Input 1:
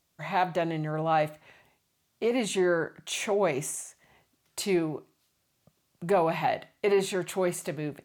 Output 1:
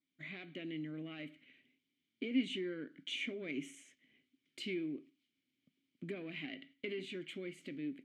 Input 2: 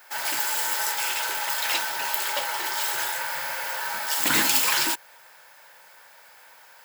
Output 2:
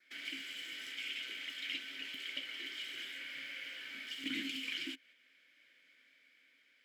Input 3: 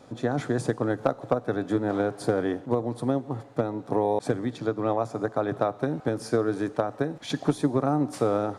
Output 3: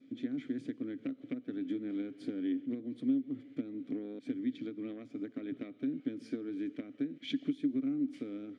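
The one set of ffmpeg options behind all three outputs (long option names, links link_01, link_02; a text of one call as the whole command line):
ffmpeg -i in.wav -filter_complex "[0:a]dynaudnorm=framelen=150:gausssize=13:maxgain=3dB,adynamicequalizer=threshold=0.00398:dfrequency=2900:dqfactor=5.5:tfrequency=2900:tqfactor=5.5:attack=5:release=100:ratio=0.375:range=3:mode=boostabove:tftype=bell,agate=range=-6dB:threshold=-46dB:ratio=16:detection=peak,aeval=exprs='(tanh(2.24*val(0)+0.6)-tanh(0.6))/2.24':channel_layout=same,acompressor=threshold=-40dB:ratio=2,asplit=3[link_01][link_02][link_03];[link_01]bandpass=frequency=270:width_type=q:width=8,volume=0dB[link_04];[link_02]bandpass=frequency=2290:width_type=q:width=8,volume=-6dB[link_05];[link_03]bandpass=frequency=3010:width_type=q:width=8,volume=-9dB[link_06];[link_04][link_05][link_06]amix=inputs=3:normalize=0,volume=9.5dB" out.wav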